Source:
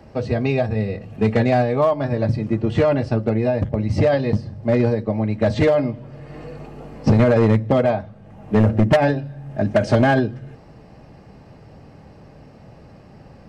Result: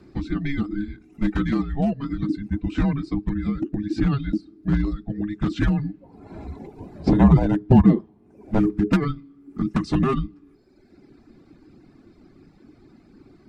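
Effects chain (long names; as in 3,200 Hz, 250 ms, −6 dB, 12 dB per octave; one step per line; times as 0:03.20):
gain on a spectral selection 0:06.01–0:08.58, 490–1,500 Hz +10 dB
reverb reduction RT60 1.2 s
frequency shifter −420 Hz
level −3.5 dB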